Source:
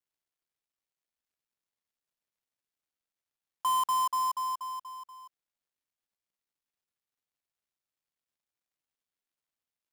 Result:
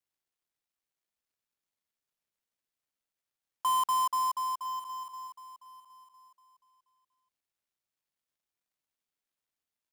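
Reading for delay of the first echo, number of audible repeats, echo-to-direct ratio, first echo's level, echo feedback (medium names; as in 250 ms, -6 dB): 1006 ms, 2, -16.5 dB, -16.5 dB, 17%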